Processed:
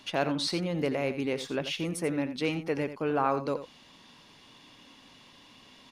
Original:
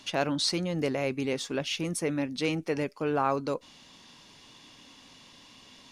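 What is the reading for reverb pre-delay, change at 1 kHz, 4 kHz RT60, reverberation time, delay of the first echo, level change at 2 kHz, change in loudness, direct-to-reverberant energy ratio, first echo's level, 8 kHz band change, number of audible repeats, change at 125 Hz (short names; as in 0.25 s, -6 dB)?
none, 0.0 dB, none, none, 85 ms, -0.5 dB, -0.5 dB, none, -11.5 dB, -5.5 dB, 1, -1.0 dB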